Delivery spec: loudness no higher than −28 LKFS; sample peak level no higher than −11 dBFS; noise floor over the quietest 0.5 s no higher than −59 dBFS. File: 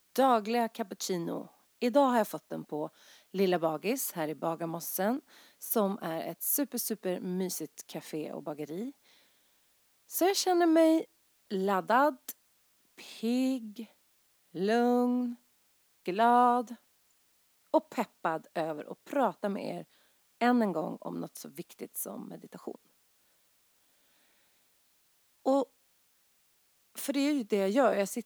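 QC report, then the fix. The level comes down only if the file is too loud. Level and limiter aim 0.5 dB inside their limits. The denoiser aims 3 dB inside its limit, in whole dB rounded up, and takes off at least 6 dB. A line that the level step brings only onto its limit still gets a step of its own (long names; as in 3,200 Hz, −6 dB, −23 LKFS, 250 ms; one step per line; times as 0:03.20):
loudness −31.0 LKFS: in spec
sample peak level −12.5 dBFS: in spec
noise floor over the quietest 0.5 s −70 dBFS: in spec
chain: no processing needed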